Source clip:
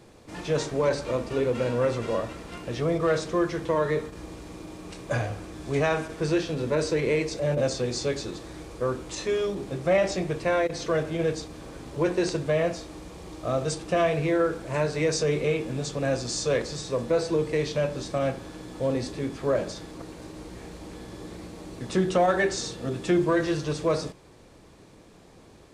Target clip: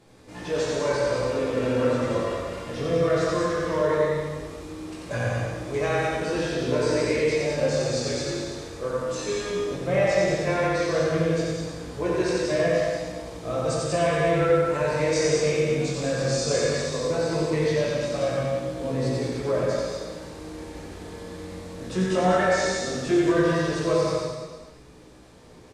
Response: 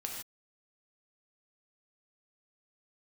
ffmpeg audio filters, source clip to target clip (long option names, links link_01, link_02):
-filter_complex "[0:a]flanger=delay=16:depth=6:speed=0.16,aecho=1:1:90|189|297.9|417.7|549.5:0.631|0.398|0.251|0.158|0.1[link_01];[1:a]atrim=start_sample=2205,asetrate=29106,aresample=44100[link_02];[link_01][link_02]afir=irnorm=-1:irlink=0"